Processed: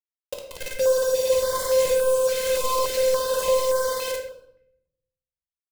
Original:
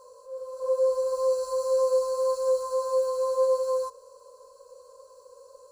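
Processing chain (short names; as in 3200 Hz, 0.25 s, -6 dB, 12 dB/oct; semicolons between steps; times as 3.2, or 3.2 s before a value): random spectral dropouts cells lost 32%; 2.17–2.79 HPF 590 Hz 6 dB/oct; in parallel at +1 dB: compressor 5:1, threshold -36 dBFS, peak gain reduction 14.5 dB; on the sum: envelope flanger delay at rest 2.7 ms, full sweep at -20.5 dBFS; on a send: flutter echo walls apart 9.6 m, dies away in 1.4 s; on the sum: bit-crush 5-bit; soft clip -19.5 dBFS, distortion -14 dB; shoebox room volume 210 m³, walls mixed, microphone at 0.93 m; stepped notch 3.5 Hz 930–2600 Hz; gain +3.5 dB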